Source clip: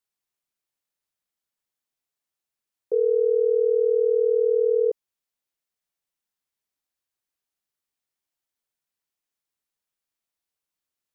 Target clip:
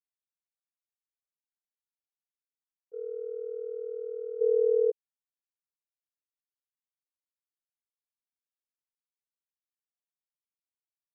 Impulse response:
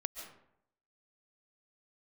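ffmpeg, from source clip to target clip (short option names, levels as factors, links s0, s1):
-filter_complex "[0:a]agate=range=0.0224:threshold=0.355:ratio=3:detection=peak,asplit=3[s0][s1][s2];[s0]afade=t=out:st=4.4:d=0.02[s3];[s1]equalizer=f=440:t=o:w=1.2:g=13,afade=t=in:st=4.4:d=0.02,afade=t=out:st=4.9:d=0.02[s4];[s2]afade=t=in:st=4.9:d=0.02[s5];[s3][s4][s5]amix=inputs=3:normalize=0"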